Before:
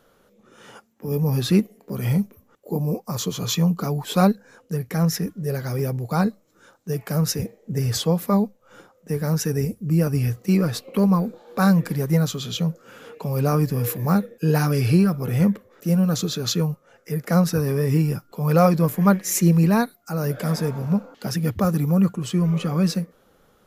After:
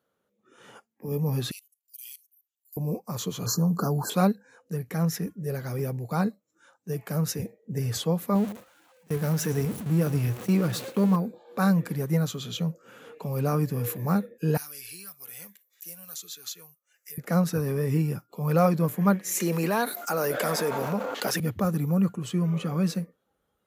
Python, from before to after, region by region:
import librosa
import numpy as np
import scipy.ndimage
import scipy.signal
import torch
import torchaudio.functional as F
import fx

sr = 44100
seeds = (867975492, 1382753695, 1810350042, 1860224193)

y = fx.chain(x, sr, fx.ellip_highpass(hz=2800.0, order=4, stop_db=70),
    fx.high_shelf(hz=5000.0, db=10.5),
    fx.level_steps(step_db=19), at=(1.51, 2.77))
y = fx.chain(y, sr, fx.brickwall_bandstop(low_hz=1700.0, high_hz=4100.0),
    fx.env_flatten(amount_pct=50), at=(3.46, 4.1))
y = fx.chain(y, sr, fx.zero_step(step_db=-27.5),
    fx.gate_hold(open_db=-20.0, close_db=-29.0, hold_ms=71.0, range_db=-21, attack_ms=1.4, release_ms=100.0),
    fx.echo_single(ms=113, db=-16.5), at=(8.35, 11.16))
y = fx.chain(y, sr, fx.differentiator(),
    fx.band_squash(depth_pct=70), at=(14.57, 17.18))
y = fx.chain(y, sr, fx.highpass(hz=410.0, slope=12),
    fx.leveller(passes=1),
    fx.env_flatten(amount_pct=70), at=(19.4, 21.4))
y = scipy.signal.sosfilt(scipy.signal.butter(2, 86.0, 'highpass', fs=sr, output='sos'), y)
y = fx.peak_eq(y, sr, hz=5100.0, db=-4.5, octaves=0.36)
y = fx.noise_reduce_blind(y, sr, reduce_db=13)
y = y * librosa.db_to_amplitude(-5.0)